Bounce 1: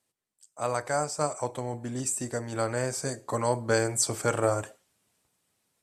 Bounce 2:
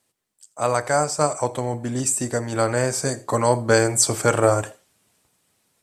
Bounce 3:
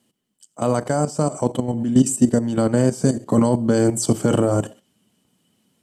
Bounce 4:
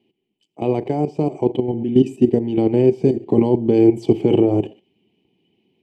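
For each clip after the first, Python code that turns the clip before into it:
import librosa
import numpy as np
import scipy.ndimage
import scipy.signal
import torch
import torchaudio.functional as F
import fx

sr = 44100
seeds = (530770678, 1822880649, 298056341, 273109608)

y1 = x + 10.0 ** (-22.5 / 20.0) * np.pad(x, (int(83 * sr / 1000.0), 0))[:len(x)]
y1 = F.gain(torch.from_numpy(y1), 8.0).numpy()
y2 = fx.level_steps(y1, sr, step_db=12)
y2 = fx.dynamic_eq(y2, sr, hz=2200.0, q=0.91, threshold_db=-43.0, ratio=4.0, max_db=-6)
y2 = fx.small_body(y2, sr, hz=(210.0, 3000.0), ring_ms=25, db=17)
y2 = F.gain(torch.from_numpy(y2), 1.0).numpy()
y3 = fx.curve_eq(y2, sr, hz=(250.0, 380.0, 570.0, 810.0, 1400.0, 2400.0, 8300.0, 12000.0), db=(0, 13, -6, 3, -23, 8, -29, -22))
y3 = F.gain(torch.from_numpy(y3), -1.5).numpy()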